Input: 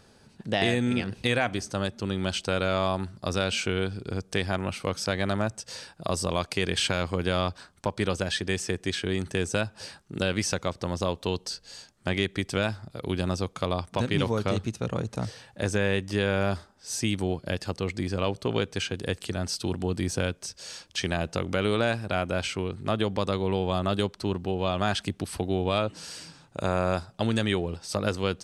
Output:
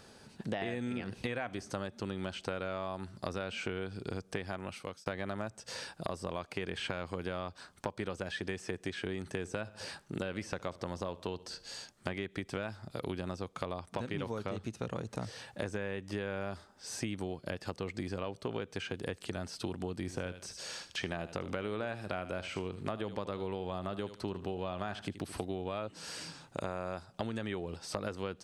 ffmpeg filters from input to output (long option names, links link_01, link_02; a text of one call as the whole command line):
ffmpeg -i in.wav -filter_complex "[0:a]asettb=1/sr,asplit=3[link_01][link_02][link_03];[link_01]atrim=end=9.384[link_04];[link_02]atrim=start=9.38:end=11.74,asetpts=PTS-STARTPTS,afade=type=in:duration=0.004:curve=qsin,afade=type=out:start_time=2.356:duration=0.004:curve=qsin,asplit=2[link_05][link_06];[link_06]adelay=67,lowpass=frequency=2000:poles=1,volume=-21dB,asplit=2[link_07][link_08];[link_08]adelay=67,lowpass=frequency=2000:poles=1,volume=0.52,asplit=2[link_09][link_10];[link_10]adelay=67,lowpass=frequency=2000:poles=1,volume=0.52,asplit=2[link_11][link_12];[link_12]adelay=67,lowpass=frequency=2000:poles=1,volume=0.52[link_13];[link_05][link_07][link_09][link_11][link_13]amix=inputs=5:normalize=0,atrim=end_sample=104076[link_14];[link_03]atrim=start=11.736[link_15];[link_04][link_14]acrossfade=duration=0.004:curve1=hsin:curve2=qsin[link_16];[link_16][link_15]acrossfade=duration=0.004:curve1=qsin:curve2=hsin,asettb=1/sr,asplit=3[link_17][link_18][link_19];[link_17]atrim=end=19.974[link_20];[link_18]atrim=start=19.97:end=25.45,asetpts=PTS-STARTPTS,afade=type=in:duration=0.004:curve=qsin,afade=type=out:start_time=5.476:duration=0.004:curve=qsin,aecho=1:1:76|152:0.178|0.0409,atrim=end_sample=241668[link_21];[link_19]atrim=start=25.446[link_22];[link_20][link_21]acrossfade=duration=0.004:curve1=hsin:curve2=qsin[link_23];[link_23][link_22]acrossfade=duration=0.004:curve1=qsin:curve2=hsin,asplit=2[link_24][link_25];[link_24]atrim=end=5.06,asetpts=PTS-STARTPTS,afade=type=out:start_time=4.29:duration=0.77[link_26];[link_25]atrim=start=5.06,asetpts=PTS-STARTPTS,afade=type=in:duration=0.004:curve=hsin[link_27];[link_26][link_27]concat=n=2:v=0:a=1,acrossover=split=2500[link_28][link_29];[link_29]acompressor=threshold=-43dB:ratio=4:attack=1:release=60[link_30];[link_28][link_30]amix=inputs=2:normalize=0,lowshelf=frequency=150:gain=-6.5,acompressor=threshold=-36dB:ratio=6,volume=2dB" out.wav